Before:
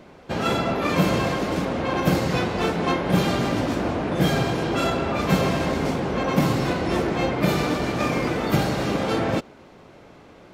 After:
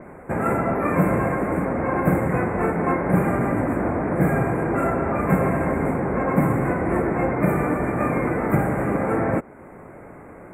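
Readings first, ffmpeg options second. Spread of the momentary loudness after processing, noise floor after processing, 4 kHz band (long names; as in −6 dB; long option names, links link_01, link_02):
3 LU, −42 dBFS, below −35 dB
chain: -filter_complex "[0:a]asplit=2[link_01][link_02];[link_02]acompressor=threshold=-36dB:ratio=6,volume=0dB[link_03];[link_01][link_03]amix=inputs=2:normalize=0,asuperstop=centerf=4300:order=12:qfactor=0.76,adynamicequalizer=threshold=0.00708:dfrequency=4800:dqfactor=0.7:tfrequency=4800:tqfactor=0.7:attack=5:release=100:ratio=0.375:range=2.5:mode=cutabove:tftype=highshelf"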